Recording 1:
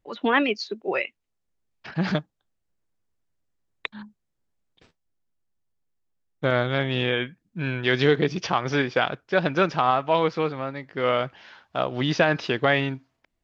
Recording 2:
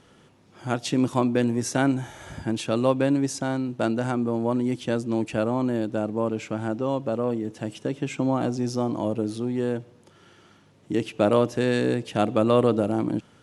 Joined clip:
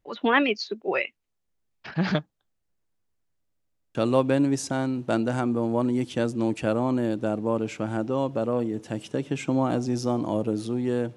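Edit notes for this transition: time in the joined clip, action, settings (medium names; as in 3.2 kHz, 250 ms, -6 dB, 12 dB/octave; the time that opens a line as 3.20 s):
recording 1
3.39 s: stutter in place 0.08 s, 7 plays
3.95 s: go over to recording 2 from 2.66 s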